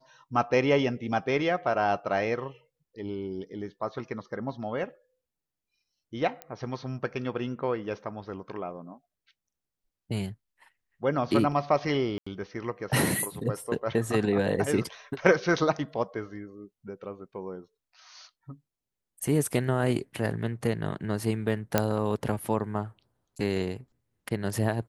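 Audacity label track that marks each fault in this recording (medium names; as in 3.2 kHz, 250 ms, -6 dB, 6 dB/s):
6.420000	6.420000	pop -21 dBFS
12.180000	12.270000	dropout 85 ms
21.780000	21.780000	pop -7 dBFS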